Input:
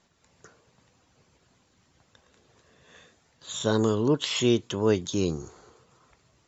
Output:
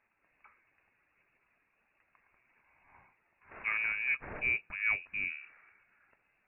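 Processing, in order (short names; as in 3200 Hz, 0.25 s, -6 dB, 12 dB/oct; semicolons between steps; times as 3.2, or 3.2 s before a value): 3.51–4.4 CVSD 32 kbps; low shelf 240 Hz -11.5 dB; inverted band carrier 2700 Hz; gain -5.5 dB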